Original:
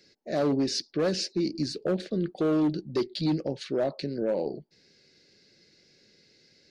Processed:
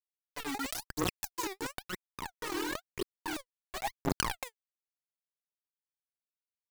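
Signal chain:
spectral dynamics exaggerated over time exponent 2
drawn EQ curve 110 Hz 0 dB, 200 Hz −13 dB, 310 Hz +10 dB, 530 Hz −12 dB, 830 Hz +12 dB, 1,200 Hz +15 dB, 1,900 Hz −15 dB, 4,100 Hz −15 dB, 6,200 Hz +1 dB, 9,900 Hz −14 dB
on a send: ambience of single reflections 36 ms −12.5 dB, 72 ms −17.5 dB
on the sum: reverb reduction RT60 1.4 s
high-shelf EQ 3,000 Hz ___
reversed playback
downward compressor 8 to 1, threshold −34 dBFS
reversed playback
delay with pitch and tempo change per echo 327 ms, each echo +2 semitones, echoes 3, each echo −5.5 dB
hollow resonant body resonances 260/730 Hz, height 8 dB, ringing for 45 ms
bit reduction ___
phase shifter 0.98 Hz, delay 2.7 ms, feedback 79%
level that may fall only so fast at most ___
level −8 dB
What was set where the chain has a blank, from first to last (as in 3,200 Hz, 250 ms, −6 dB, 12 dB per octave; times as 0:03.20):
−2.5 dB, 5 bits, 27 dB per second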